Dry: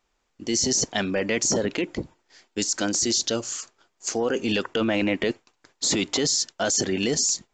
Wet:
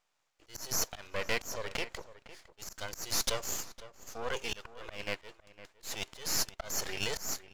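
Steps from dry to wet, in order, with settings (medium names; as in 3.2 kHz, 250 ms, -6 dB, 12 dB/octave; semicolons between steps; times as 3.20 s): inverse Chebyshev high-pass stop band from 200 Hz, stop band 50 dB; slow attack 320 ms; half-wave rectifier; echo from a far wall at 87 m, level -15 dB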